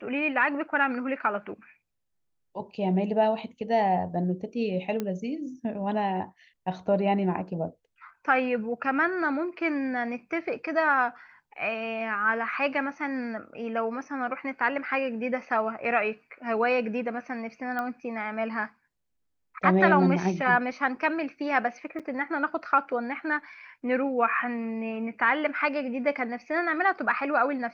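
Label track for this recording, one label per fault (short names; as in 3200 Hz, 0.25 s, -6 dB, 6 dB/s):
5.000000	5.000000	pop -17 dBFS
17.790000	17.790000	pop -19 dBFS
21.990000	22.000000	gap 6.6 ms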